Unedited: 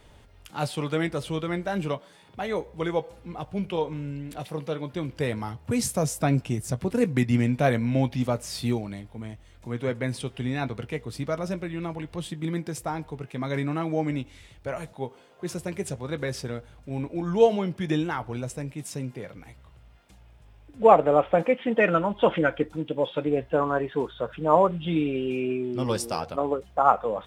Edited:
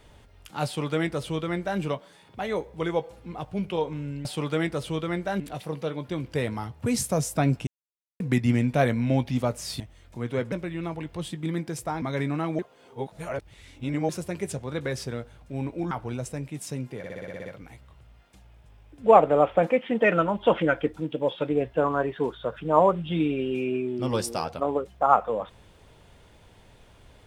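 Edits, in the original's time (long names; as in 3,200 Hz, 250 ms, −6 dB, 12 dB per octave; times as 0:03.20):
0:00.65–0:01.80: duplicate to 0:04.25
0:06.52–0:07.05: silence
0:08.65–0:09.30: remove
0:10.02–0:11.51: remove
0:13.01–0:13.39: remove
0:13.96–0:15.46: reverse
0:17.28–0:18.15: remove
0:19.22: stutter 0.06 s, 9 plays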